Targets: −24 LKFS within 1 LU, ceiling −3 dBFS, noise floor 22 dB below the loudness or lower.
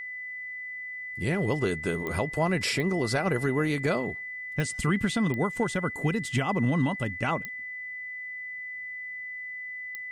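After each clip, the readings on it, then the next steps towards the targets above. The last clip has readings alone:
number of clicks 6; interfering tone 2,000 Hz; level of the tone −35 dBFS; integrated loudness −29.5 LKFS; sample peak −15.0 dBFS; target loudness −24.0 LKFS
→ click removal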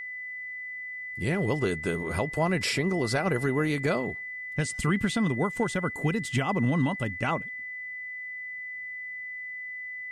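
number of clicks 0; interfering tone 2,000 Hz; level of the tone −35 dBFS
→ notch filter 2,000 Hz, Q 30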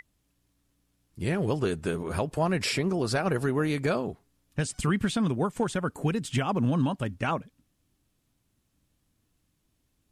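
interfering tone none found; integrated loudness −28.5 LKFS; sample peak −15.5 dBFS; target loudness −24.0 LKFS
→ level +4.5 dB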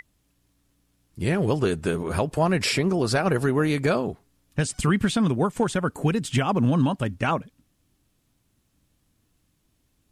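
integrated loudness −24.0 LKFS; sample peak −11.0 dBFS; background noise floor −70 dBFS

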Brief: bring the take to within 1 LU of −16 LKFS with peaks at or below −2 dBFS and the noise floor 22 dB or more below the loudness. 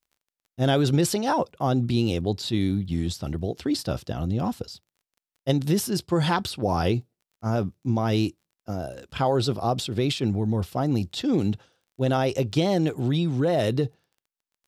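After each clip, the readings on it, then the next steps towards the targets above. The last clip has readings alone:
crackle rate 23 per second; integrated loudness −25.5 LKFS; sample peak −9.0 dBFS; target loudness −16.0 LKFS
→ click removal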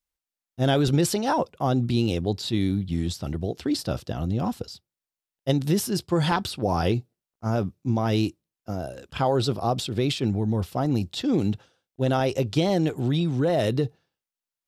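crackle rate 0 per second; integrated loudness −25.5 LKFS; sample peak −9.0 dBFS; target loudness −16.0 LKFS
→ level +9.5 dB
brickwall limiter −2 dBFS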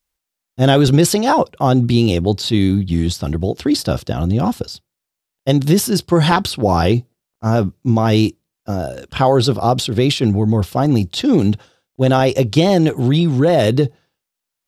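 integrated loudness −16.0 LKFS; sample peak −2.0 dBFS; background noise floor −82 dBFS

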